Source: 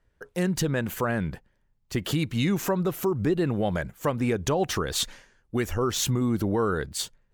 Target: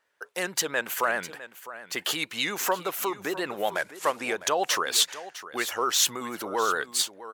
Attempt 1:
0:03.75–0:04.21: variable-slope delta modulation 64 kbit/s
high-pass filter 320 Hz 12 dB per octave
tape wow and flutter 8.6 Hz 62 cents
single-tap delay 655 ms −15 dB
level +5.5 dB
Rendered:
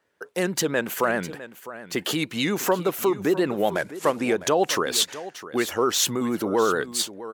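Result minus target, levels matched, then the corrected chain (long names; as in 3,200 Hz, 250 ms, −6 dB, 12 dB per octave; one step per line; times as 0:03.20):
250 Hz band +9.0 dB
0:03.75–0:04.21: variable-slope delta modulation 64 kbit/s
high-pass filter 730 Hz 12 dB per octave
tape wow and flutter 8.6 Hz 62 cents
single-tap delay 655 ms −15 dB
level +5.5 dB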